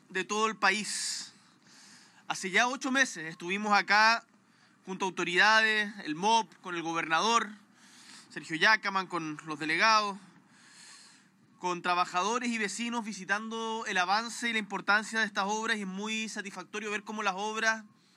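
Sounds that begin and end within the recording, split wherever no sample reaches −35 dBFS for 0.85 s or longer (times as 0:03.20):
0:02.30–0:10.13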